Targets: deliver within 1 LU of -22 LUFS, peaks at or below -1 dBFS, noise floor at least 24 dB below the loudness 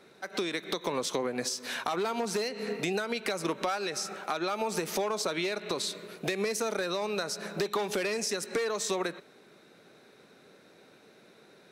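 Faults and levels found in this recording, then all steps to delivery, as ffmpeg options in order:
loudness -32.0 LUFS; peak -19.5 dBFS; loudness target -22.0 LUFS
-> -af "volume=10dB"

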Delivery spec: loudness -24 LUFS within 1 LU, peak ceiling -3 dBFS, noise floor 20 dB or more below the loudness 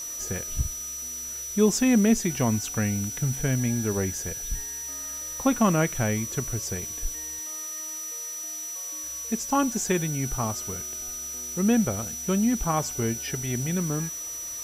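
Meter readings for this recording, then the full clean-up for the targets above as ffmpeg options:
steady tone 5900 Hz; tone level -33 dBFS; noise floor -35 dBFS; noise floor target -47 dBFS; loudness -27.0 LUFS; peak -8.5 dBFS; loudness target -24.0 LUFS
-> -af "bandreject=f=5.9k:w=30"
-af "afftdn=nr=12:nf=-35"
-af "volume=3dB"

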